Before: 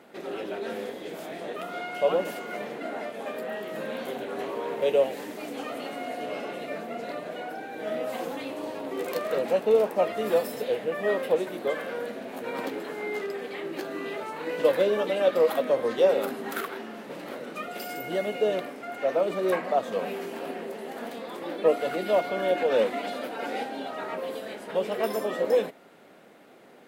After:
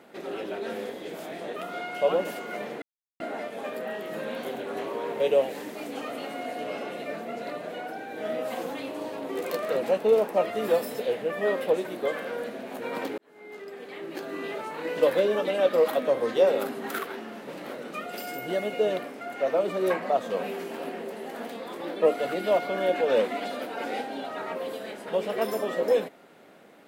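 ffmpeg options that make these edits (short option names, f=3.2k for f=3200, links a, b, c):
-filter_complex "[0:a]asplit=3[a][b][c];[a]atrim=end=2.82,asetpts=PTS-STARTPTS,afade=t=out:st=2.816:d=0.004:c=hsin,apad=pad_dur=0.38[d];[b]atrim=start=2.82:end=12.8,asetpts=PTS-STARTPTS,afade=t=in:d=0.004:c=hsin,afade=t=out:st=9.976:d=0.004:c=hsin[e];[c]atrim=start=12.8,asetpts=PTS-STARTPTS,afade=t=in:d=1.27[f];[d][e][f]concat=n=3:v=0:a=1"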